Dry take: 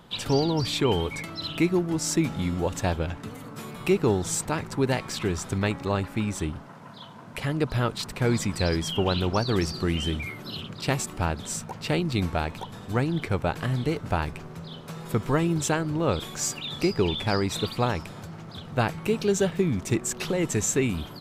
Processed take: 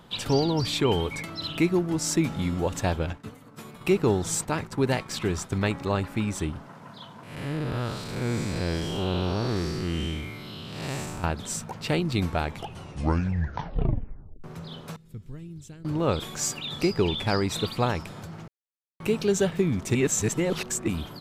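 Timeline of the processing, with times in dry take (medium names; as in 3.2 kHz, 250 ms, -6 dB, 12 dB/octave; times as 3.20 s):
3.13–5.69 s: expander -34 dBFS
7.23–11.24 s: spectral blur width 231 ms
12.40 s: tape stop 2.04 s
14.96–15.85 s: amplifier tone stack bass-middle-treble 10-0-1
18.48–19.00 s: mute
19.95–20.88 s: reverse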